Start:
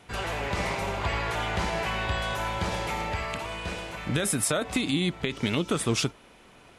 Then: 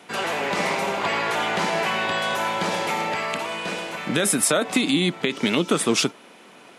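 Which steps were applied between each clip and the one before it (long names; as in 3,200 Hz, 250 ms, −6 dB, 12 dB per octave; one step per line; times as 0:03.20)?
high-pass filter 180 Hz 24 dB per octave
level +6.5 dB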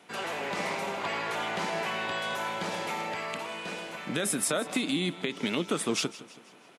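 repeating echo 163 ms, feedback 49%, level −17 dB
level −8.5 dB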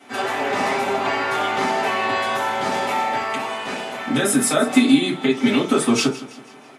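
convolution reverb RT60 0.30 s, pre-delay 4 ms, DRR −9 dB
level +1 dB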